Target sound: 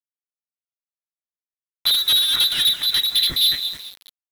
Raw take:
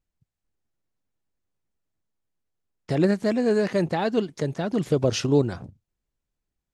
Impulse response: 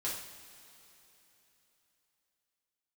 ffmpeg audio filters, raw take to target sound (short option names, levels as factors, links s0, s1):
-filter_complex "[0:a]lowpass=f=2300:t=q:w=0.5098,lowpass=f=2300:t=q:w=0.6013,lowpass=f=2300:t=q:w=0.9,lowpass=f=2300:t=q:w=2.563,afreqshift=-2700,aecho=1:1:0.8:0.43,asplit=2[s0][s1];[s1]acompressor=threshold=0.0562:ratio=16,volume=1.26[s2];[s0][s2]amix=inputs=2:normalize=0,lowshelf=f=190:g=11,asplit=2[s3][s4];[s4]aecho=0:1:336|672|1008|1344:0.224|0.0851|0.0323|0.0123[s5];[s3][s5]amix=inputs=2:normalize=0,adynamicsmooth=sensitivity=4:basefreq=1700,bandreject=f=121.2:t=h:w=4,bandreject=f=242.4:t=h:w=4,bandreject=f=363.6:t=h:w=4,bandreject=f=484.8:t=h:w=4,bandreject=f=606:t=h:w=4,bandreject=f=727.2:t=h:w=4,bandreject=f=848.4:t=h:w=4,bandreject=f=969.6:t=h:w=4,bandreject=f=1090.8:t=h:w=4,bandreject=f=1212:t=h:w=4,bandreject=f=1333.2:t=h:w=4,bandreject=f=1454.4:t=h:w=4,bandreject=f=1575.6:t=h:w=4,bandreject=f=1696.8:t=h:w=4,bandreject=f=1818:t=h:w=4,bandreject=f=1939.2:t=h:w=4,bandreject=f=2060.4:t=h:w=4,bandreject=f=2181.6:t=h:w=4,bandreject=f=2302.8:t=h:w=4,bandreject=f=2424:t=h:w=4,bandreject=f=2545.2:t=h:w=4,bandreject=f=2666.4:t=h:w=4,bandreject=f=2787.6:t=h:w=4,bandreject=f=2908.8:t=h:w=4,bandreject=f=3030:t=h:w=4,asoftclip=type=hard:threshold=0.126,tremolo=f=2.4:d=0.44,acrusher=bits=6:mix=0:aa=0.000001,asetrate=68796,aresample=44100,volume=1.68"